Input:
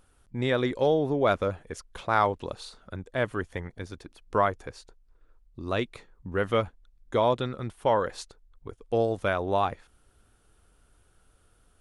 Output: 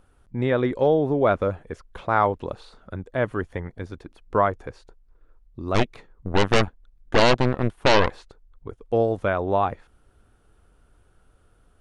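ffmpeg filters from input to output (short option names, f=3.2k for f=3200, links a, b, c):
-filter_complex "[0:a]acrossover=split=3600[a][b];[b]acompressor=threshold=-51dB:ratio=4:attack=1:release=60[c];[a][c]amix=inputs=2:normalize=0,highshelf=f=2.7k:g=-10.5,asplit=3[d][e][f];[d]afade=t=out:st=5.74:d=0.02[g];[e]aeval=exprs='0.251*(cos(1*acos(clip(val(0)/0.251,-1,1)))-cos(1*PI/2))+0.0631*(cos(6*acos(clip(val(0)/0.251,-1,1)))-cos(6*PI/2))+0.126*(cos(8*acos(clip(val(0)/0.251,-1,1)))-cos(8*PI/2))':c=same,afade=t=in:st=5.74:d=0.02,afade=t=out:st=8.11:d=0.02[h];[f]afade=t=in:st=8.11:d=0.02[i];[g][h][i]amix=inputs=3:normalize=0,volume=4.5dB"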